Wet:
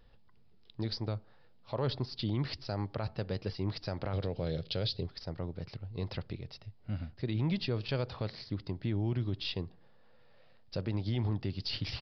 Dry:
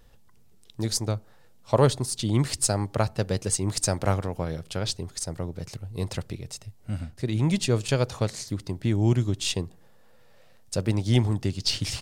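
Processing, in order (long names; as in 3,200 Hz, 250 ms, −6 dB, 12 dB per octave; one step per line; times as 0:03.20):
0:04.13–0:05.07: octave-band graphic EQ 125/500/1,000/4,000 Hz +7/+8/−6/+12 dB
brickwall limiter −18 dBFS, peak gain reduction 12.5 dB
downsampling to 11,025 Hz
level −5.5 dB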